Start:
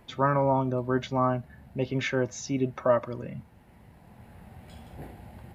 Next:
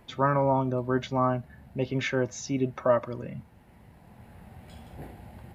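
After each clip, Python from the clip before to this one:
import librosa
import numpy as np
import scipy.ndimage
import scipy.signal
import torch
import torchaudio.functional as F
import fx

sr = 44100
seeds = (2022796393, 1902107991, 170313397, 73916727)

y = x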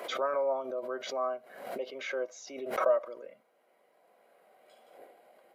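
y = fx.ladder_highpass(x, sr, hz=440.0, resonance_pct=45)
y = fx.notch_comb(y, sr, f0_hz=890.0)
y = fx.pre_swell(y, sr, db_per_s=67.0)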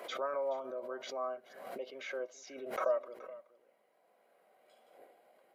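y = x + 10.0 ** (-18.0 / 20.0) * np.pad(x, (int(425 * sr / 1000.0), 0))[:len(x)]
y = y * 10.0 ** (-5.5 / 20.0)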